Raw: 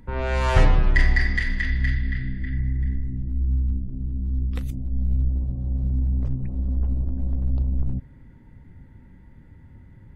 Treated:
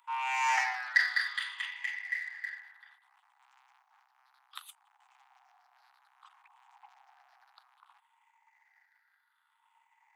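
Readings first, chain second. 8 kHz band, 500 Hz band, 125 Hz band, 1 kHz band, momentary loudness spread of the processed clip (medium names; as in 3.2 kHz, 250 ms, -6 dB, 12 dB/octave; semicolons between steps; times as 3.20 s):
no reading, under -25 dB, under -40 dB, -1.5 dB, 22 LU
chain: drifting ripple filter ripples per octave 0.66, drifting -0.62 Hz, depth 15 dB; waveshaping leveller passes 1; steep high-pass 780 Hz 96 dB/octave; trim -7 dB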